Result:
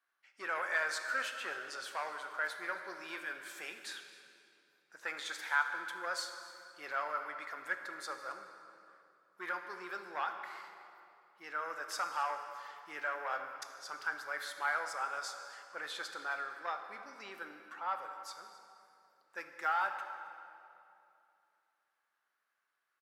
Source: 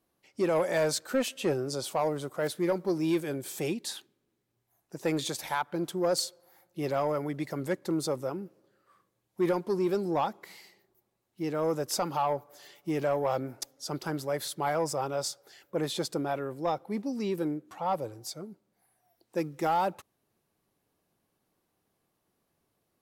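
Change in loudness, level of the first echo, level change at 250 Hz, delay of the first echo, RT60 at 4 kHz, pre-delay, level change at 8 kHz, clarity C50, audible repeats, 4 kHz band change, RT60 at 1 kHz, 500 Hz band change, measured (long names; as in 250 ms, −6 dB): −7.5 dB, −21.5 dB, −25.5 dB, 266 ms, 2.0 s, 9 ms, −11.0 dB, 7.0 dB, 1, −7.0 dB, 2.6 s, −17.5 dB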